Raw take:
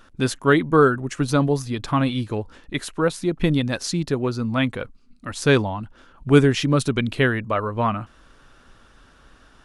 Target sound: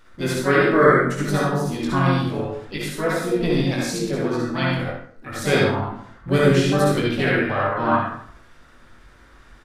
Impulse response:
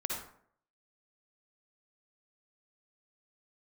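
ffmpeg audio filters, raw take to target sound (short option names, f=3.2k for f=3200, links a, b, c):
-filter_complex "[0:a]flanger=delay=19.5:depth=2.8:speed=0.71,aecho=1:1:46|68:0.15|0.398[a];[1:a]atrim=start_sample=2205[b];[a][b]afir=irnorm=-1:irlink=0,asplit=2[c][d];[d]asetrate=58866,aresample=44100,atempo=0.749154,volume=-5dB[e];[c][e]amix=inputs=2:normalize=0,volume=-1dB"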